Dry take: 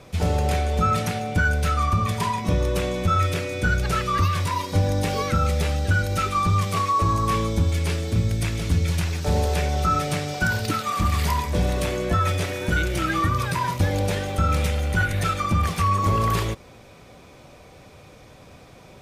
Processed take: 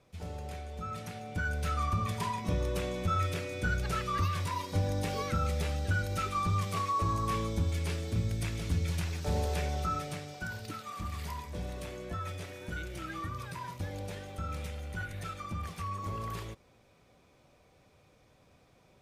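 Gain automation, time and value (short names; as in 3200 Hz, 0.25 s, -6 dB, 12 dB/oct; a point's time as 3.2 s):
0.83 s -19 dB
1.75 s -9.5 dB
9.69 s -9.5 dB
10.38 s -16.5 dB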